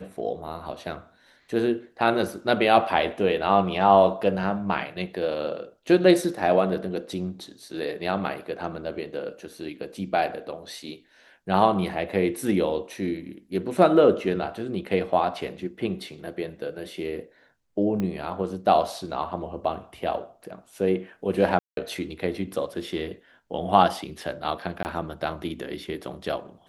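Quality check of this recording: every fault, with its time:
0:18.00: click −17 dBFS
0:21.59–0:21.77: drop-out 182 ms
0:24.83–0:24.85: drop-out 19 ms

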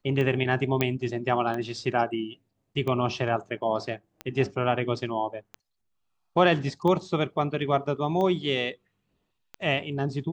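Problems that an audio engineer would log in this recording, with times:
scratch tick 45 rpm −20 dBFS
0:00.81: click −10 dBFS

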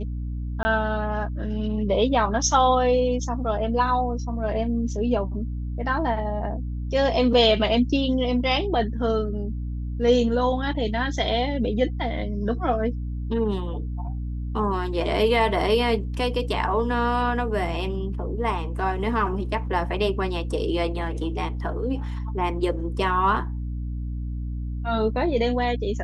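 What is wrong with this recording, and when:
mains hum 60 Hz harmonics 5 −29 dBFS
0:00.63–0:00.65: drop-out 20 ms

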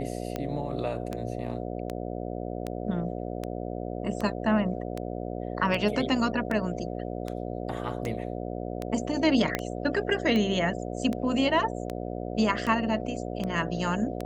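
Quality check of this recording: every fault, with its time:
mains buzz 60 Hz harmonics 12 −34 dBFS
scratch tick 78 rpm −18 dBFS
0:09.55: click −11 dBFS

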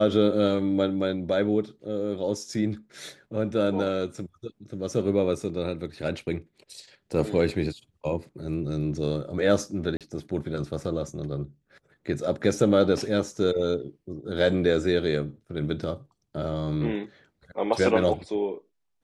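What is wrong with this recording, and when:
0:09.97–0:10.01: drop-out 37 ms

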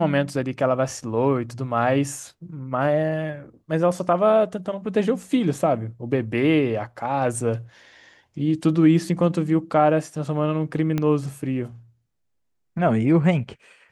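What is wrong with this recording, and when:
0:10.98: click −12 dBFS

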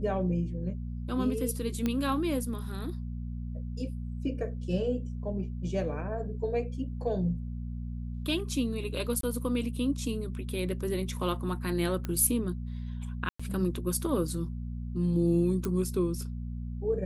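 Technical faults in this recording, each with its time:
mains hum 60 Hz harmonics 4 −36 dBFS
0:01.86: click −16 dBFS
0:09.21–0:09.23: drop-out 23 ms
0:12.05: click −20 dBFS
0:13.29–0:13.39: drop-out 105 ms
0:15.65: click −19 dBFS

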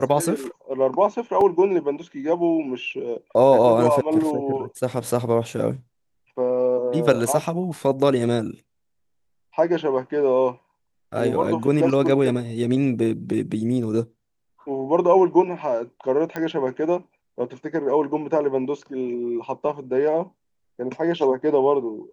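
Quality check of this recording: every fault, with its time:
0:01.41: drop-out 2.3 ms
0:16.36: click −15 dBFS

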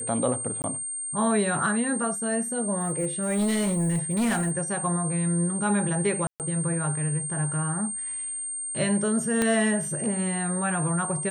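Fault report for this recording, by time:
whistle 8,700 Hz −30 dBFS
0:00.62–0:00.64: drop-out 19 ms
0:02.80–0:04.52: clipping −21 dBFS
0:06.27–0:06.40: drop-out 128 ms
0:09.42: click −10 dBFS

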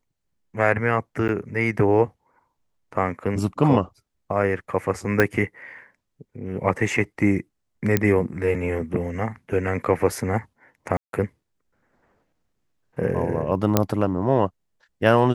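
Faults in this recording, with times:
0:01.28–0:01.29: drop-out 8.9 ms
0:05.20: click −5 dBFS
0:07.97: click −5 dBFS
0:10.97–0:11.13: drop-out 162 ms
0:13.77: click −2 dBFS

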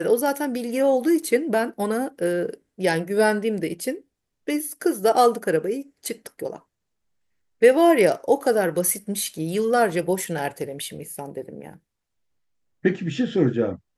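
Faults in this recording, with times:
0:01.22–0:01.23: drop-out 5.7 ms

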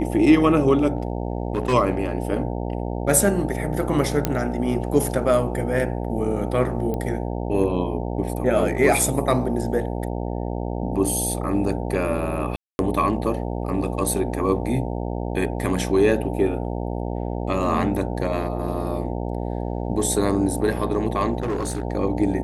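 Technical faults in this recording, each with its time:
mains buzz 60 Hz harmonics 15 −27 dBFS
0:00.97–0:01.74: clipping −17 dBFS
0:04.25: click −5 dBFS
0:06.94: click −16 dBFS
0:12.56–0:12.79: drop-out 231 ms
0:21.40–0:21.83: clipping −21 dBFS

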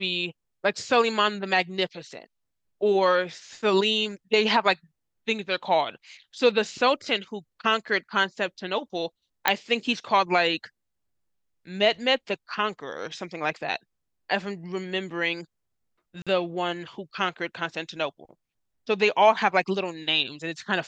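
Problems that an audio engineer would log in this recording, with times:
0:09.48: click −4 dBFS
0:16.22–0:16.27: drop-out 46 ms

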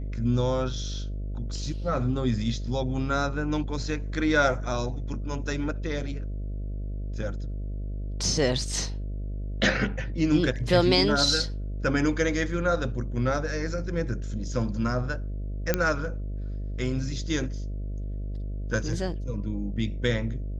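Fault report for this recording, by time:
mains buzz 50 Hz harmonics 13 −32 dBFS
0:15.74: click −8 dBFS

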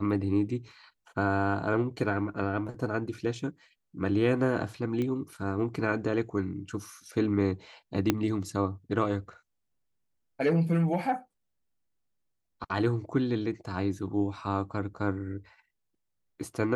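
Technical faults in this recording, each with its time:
0:05.02: click −21 dBFS
0:08.10: click −9 dBFS

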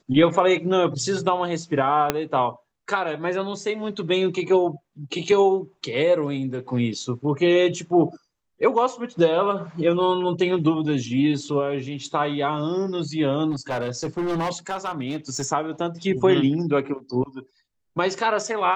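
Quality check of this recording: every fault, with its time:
0:02.10: click −4 dBFS
0:13.50–0:15.46: clipping −21.5 dBFS

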